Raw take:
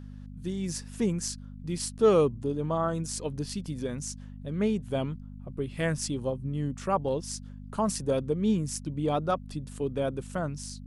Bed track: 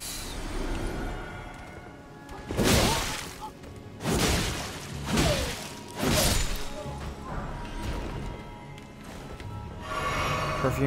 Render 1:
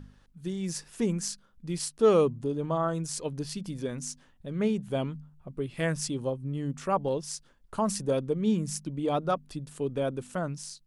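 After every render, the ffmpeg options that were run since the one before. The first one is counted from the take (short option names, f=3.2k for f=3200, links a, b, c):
-af "bandreject=f=50:t=h:w=4,bandreject=f=100:t=h:w=4,bandreject=f=150:t=h:w=4,bandreject=f=200:t=h:w=4,bandreject=f=250:t=h:w=4"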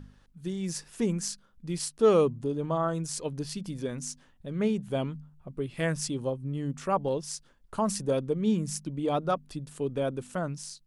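-af anull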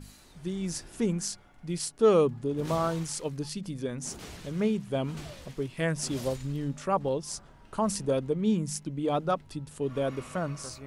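-filter_complex "[1:a]volume=-19dB[a];[0:a][a]amix=inputs=2:normalize=0"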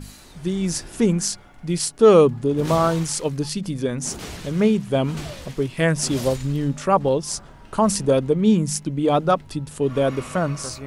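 -af "volume=9.5dB,alimiter=limit=-3dB:level=0:latency=1"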